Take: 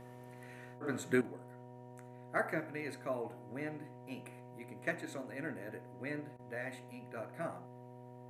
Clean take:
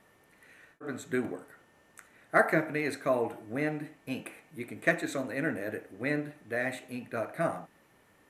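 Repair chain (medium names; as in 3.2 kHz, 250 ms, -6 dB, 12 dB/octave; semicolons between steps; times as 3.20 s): de-hum 124 Hz, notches 6; band-stop 950 Hz, Q 30; interpolate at 6.37 s, 21 ms; trim 0 dB, from 1.21 s +10.5 dB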